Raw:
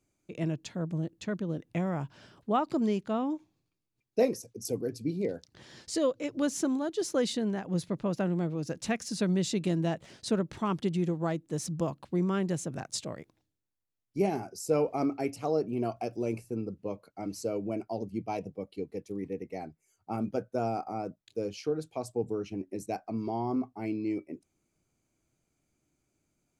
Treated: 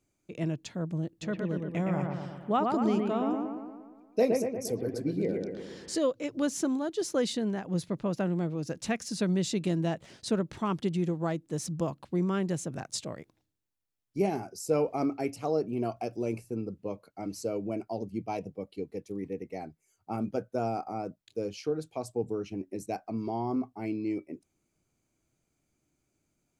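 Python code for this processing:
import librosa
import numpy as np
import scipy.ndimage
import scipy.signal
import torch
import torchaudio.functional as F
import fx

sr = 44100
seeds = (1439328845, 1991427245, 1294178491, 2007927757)

y = fx.echo_bbd(x, sr, ms=117, stages=2048, feedback_pct=59, wet_db=-3.5, at=(1.21, 5.97), fade=0.02)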